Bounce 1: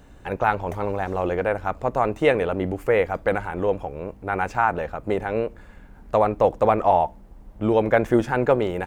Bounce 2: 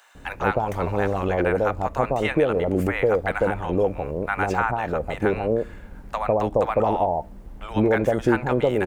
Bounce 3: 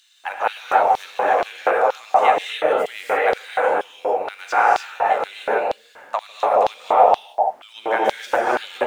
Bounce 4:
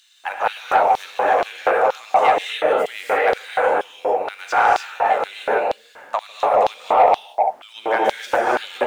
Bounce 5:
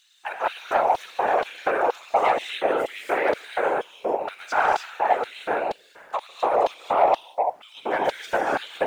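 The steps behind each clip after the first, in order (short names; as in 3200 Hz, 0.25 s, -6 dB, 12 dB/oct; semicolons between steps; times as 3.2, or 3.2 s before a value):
compressor 3:1, threshold -22 dBFS, peak gain reduction 8 dB; bands offset in time highs, lows 0.15 s, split 820 Hz; gain +5.5 dB
median filter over 3 samples; non-linear reverb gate 0.32 s rising, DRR -3.5 dB; LFO high-pass square 2.1 Hz 720–3700 Hz
soft clip -6.5 dBFS, distortion -20 dB; gain +1.5 dB
whisperiser; gain -5 dB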